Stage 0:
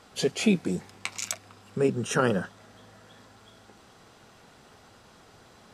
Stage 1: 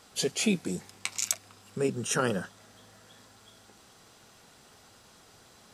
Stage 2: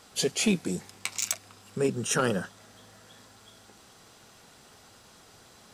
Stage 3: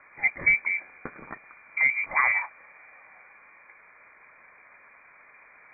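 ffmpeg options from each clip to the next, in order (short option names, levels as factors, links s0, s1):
-af "highshelf=f=4100:g=11,volume=0.596"
-af "asoftclip=type=hard:threshold=0.126,volume=1.26"
-af "lowpass=f=2100:t=q:w=0.5098,lowpass=f=2100:t=q:w=0.6013,lowpass=f=2100:t=q:w=0.9,lowpass=f=2100:t=q:w=2.563,afreqshift=-2500,volume=1.5"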